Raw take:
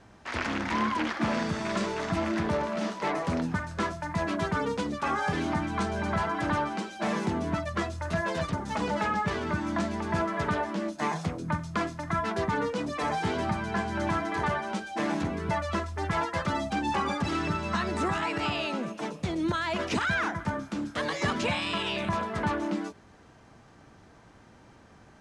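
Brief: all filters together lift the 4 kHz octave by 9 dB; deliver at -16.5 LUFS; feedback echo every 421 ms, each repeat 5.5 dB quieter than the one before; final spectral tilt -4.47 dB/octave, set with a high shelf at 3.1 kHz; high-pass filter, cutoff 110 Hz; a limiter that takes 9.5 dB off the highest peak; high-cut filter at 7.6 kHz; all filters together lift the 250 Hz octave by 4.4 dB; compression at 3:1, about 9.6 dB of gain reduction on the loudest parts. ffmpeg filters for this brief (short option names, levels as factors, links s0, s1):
-af "highpass=110,lowpass=7600,equalizer=f=250:t=o:g=6,highshelf=f=3100:g=6,equalizer=f=4000:t=o:g=7.5,acompressor=threshold=0.02:ratio=3,alimiter=level_in=1.5:limit=0.0631:level=0:latency=1,volume=0.668,aecho=1:1:421|842|1263|1684|2105|2526|2947:0.531|0.281|0.149|0.079|0.0419|0.0222|0.0118,volume=8.91"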